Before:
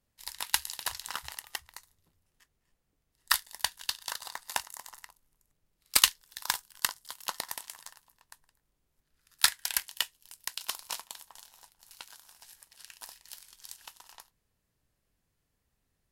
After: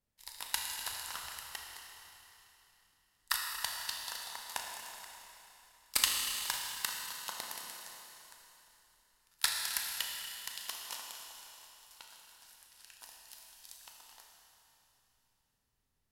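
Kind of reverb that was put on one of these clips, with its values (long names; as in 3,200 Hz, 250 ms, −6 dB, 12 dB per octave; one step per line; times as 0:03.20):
four-comb reverb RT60 3.2 s, combs from 26 ms, DRR 0 dB
level −7.5 dB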